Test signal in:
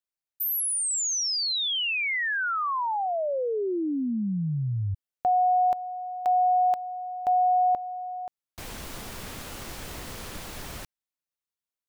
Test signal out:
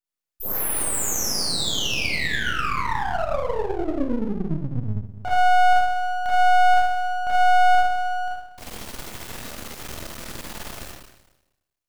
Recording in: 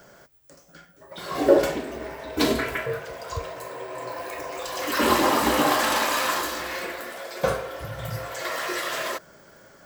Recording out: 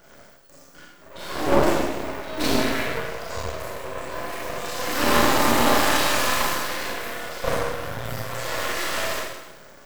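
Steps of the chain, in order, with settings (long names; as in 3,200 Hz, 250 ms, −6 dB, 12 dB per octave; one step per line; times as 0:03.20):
one-sided soft clipper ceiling −14.5 dBFS
four-comb reverb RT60 1 s, combs from 26 ms, DRR −6.5 dB
half-wave rectification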